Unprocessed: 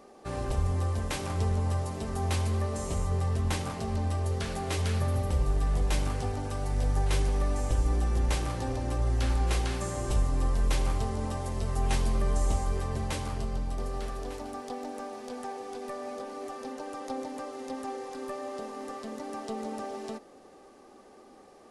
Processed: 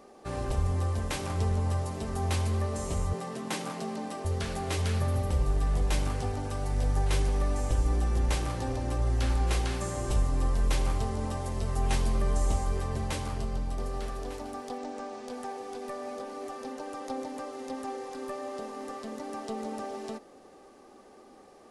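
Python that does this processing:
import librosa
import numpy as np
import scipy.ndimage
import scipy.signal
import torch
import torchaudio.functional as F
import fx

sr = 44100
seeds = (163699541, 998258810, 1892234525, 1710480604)

y = fx.steep_highpass(x, sr, hz=150.0, slope=48, at=(3.13, 4.25))
y = fx.lowpass(y, sr, hz=8300.0, slope=24, at=(14.78, 15.28))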